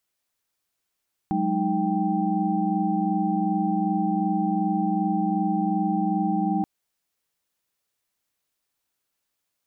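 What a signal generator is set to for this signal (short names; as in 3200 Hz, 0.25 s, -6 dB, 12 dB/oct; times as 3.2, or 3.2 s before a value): chord F#3/G#3/D#4/G5 sine, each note -26.5 dBFS 5.33 s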